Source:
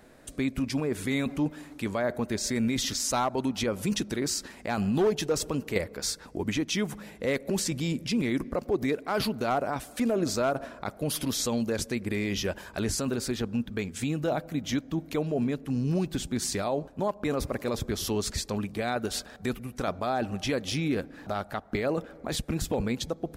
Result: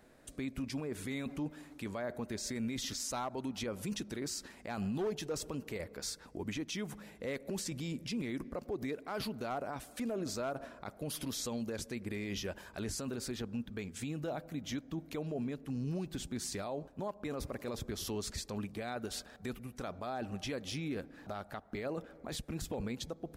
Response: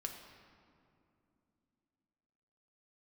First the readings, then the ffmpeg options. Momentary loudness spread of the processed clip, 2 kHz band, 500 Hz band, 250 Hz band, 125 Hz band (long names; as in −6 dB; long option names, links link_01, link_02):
6 LU, −10.0 dB, −10.5 dB, −10.0 dB, −9.5 dB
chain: -af "alimiter=limit=-22.5dB:level=0:latency=1:release=43,volume=-7.5dB"